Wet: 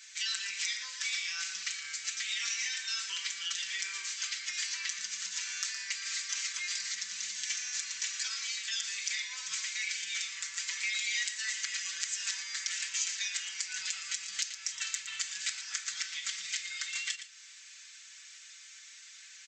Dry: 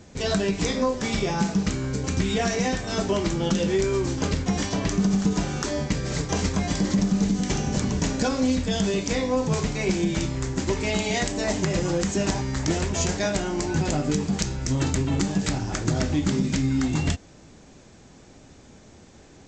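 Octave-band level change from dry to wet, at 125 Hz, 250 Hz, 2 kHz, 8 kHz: under -40 dB, under -40 dB, -3.0 dB, -0.5 dB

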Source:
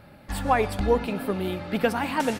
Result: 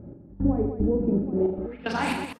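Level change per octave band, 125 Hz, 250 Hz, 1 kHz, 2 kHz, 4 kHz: +2.0 dB, +3.5 dB, -7.0 dB, -4.5 dB, no reading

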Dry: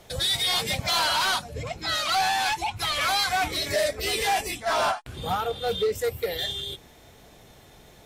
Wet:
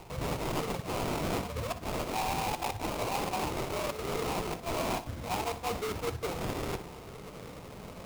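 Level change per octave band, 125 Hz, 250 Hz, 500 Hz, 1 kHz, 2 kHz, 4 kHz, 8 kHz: +0.5 dB, +3.5 dB, -5.5 dB, -8.0 dB, -12.0 dB, -16.0 dB, -9.5 dB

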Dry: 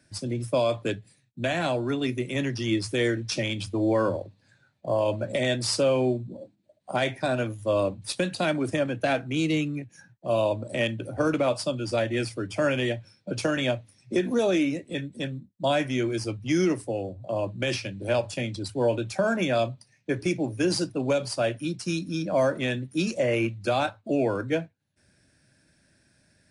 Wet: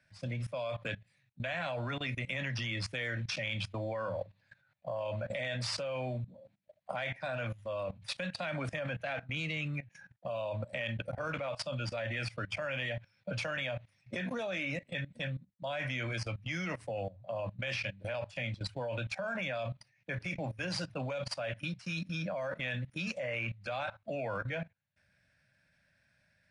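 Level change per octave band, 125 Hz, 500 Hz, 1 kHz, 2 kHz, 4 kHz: -6.5 dB, -12.5 dB, -10.0 dB, -4.5 dB, -7.5 dB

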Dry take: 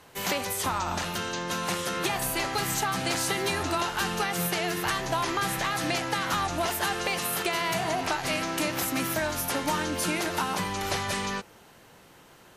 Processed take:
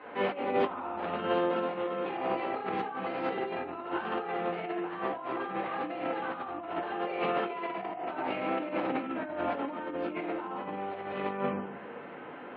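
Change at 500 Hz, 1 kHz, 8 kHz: 0.0 dB, -3.5 dB, under -40 dB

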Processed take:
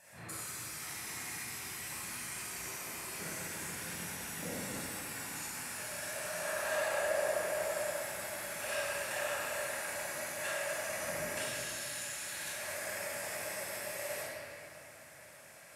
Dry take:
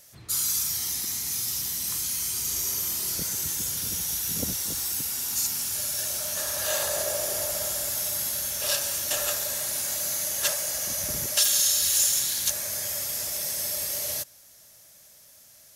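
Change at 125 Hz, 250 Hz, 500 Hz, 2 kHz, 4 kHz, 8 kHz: -7.5 dB, -4.5 dB, -0.5 dB, +0.5 dB, -14.5 dB, -15.5 dB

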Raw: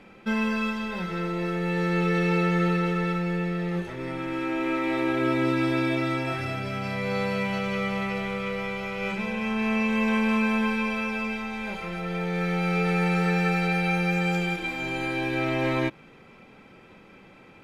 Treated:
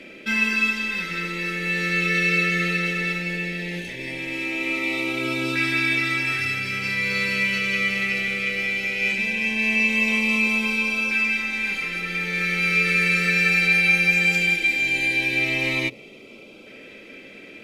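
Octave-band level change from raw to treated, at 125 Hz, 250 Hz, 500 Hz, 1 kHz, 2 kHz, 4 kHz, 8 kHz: -4.0 dB, -3.5 dB, -4.5 dB, -5.0 dB, +11.0 dB, +9.5 dB, +11.0 dB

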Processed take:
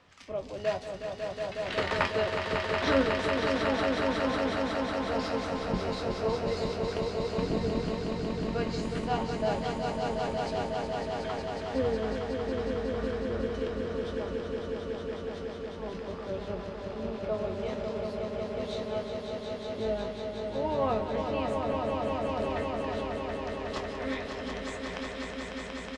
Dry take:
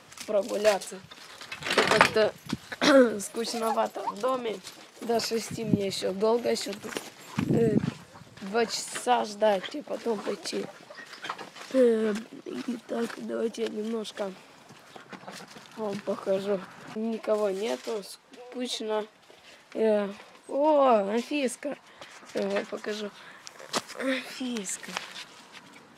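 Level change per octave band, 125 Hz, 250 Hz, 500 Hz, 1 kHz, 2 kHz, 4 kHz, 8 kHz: +2.0 dB, -2.5 dB, -3.0 dB, -2.5 dB, -3.0 dB, -4.5 dB, -12.5 dB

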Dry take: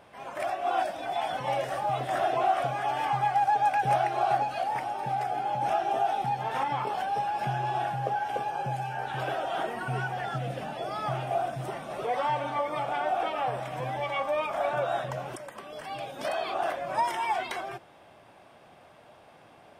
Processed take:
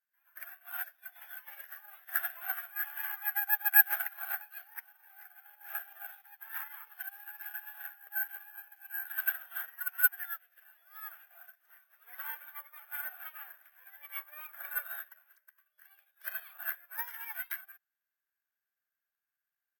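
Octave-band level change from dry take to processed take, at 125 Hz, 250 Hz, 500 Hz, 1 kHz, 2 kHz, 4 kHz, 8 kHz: under -40 dB, under -40 dB, under -30 dB, -22.5 dB, +0.5 dB, -15.5 dB, no reading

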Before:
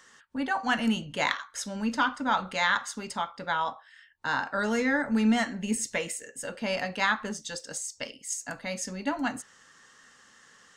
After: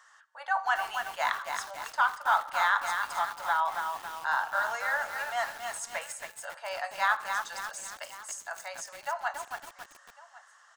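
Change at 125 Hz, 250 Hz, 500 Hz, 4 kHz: under -20 dB, under -30 dB, -5.5 dB, -5.5 dB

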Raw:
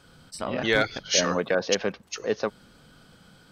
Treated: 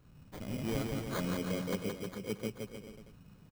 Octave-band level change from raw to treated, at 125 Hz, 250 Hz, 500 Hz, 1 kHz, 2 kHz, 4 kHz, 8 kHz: -0.5 dB, -4.0 dB, -13.0 dB, -13.0 dB, -17.5 dB, -17.5 dB, -18.5 dB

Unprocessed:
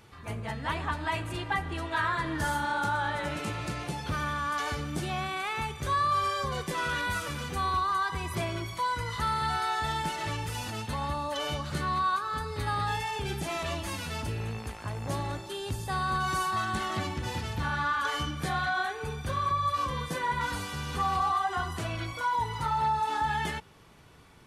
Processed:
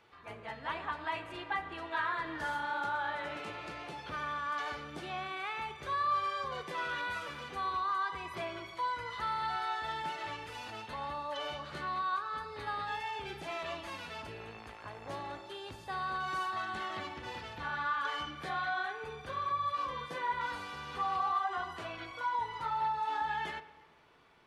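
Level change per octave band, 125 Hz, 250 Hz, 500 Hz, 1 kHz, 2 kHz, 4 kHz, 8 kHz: -17.5 dB, -11.5 dB, -6.0 dB, -5.0 dB, -5.0 dB, -7.0 dB, -16.0 dB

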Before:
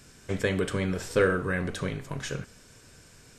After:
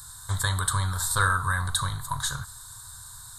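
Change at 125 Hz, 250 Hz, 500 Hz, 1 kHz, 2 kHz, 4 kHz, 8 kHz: +5.0 dB, -12.0 dB, -16.0 dB, +9.5 dB, +3.5 dB, +8.5 dB, +14.0 dB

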